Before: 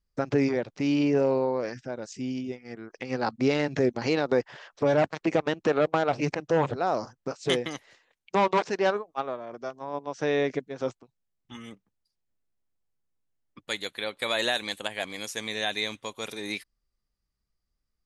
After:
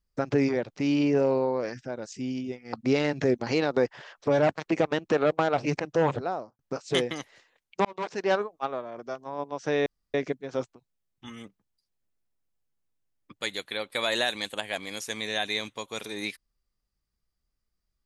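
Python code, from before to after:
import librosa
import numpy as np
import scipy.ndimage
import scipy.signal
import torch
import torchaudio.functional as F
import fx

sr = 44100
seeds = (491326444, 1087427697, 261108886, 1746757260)

y = fx.studio_fade_out(x, sr, start_s=6.68, length_s=0.46)
y = fx.edit(y, sr, fx.cut(start_s=2.73, length_s=0.55),
    fx.fade_in_span(start_s=8.4, length_s=0.47),
    fx.insert_room_tone(at_s=10.41, length_s=0.28), tone=tone)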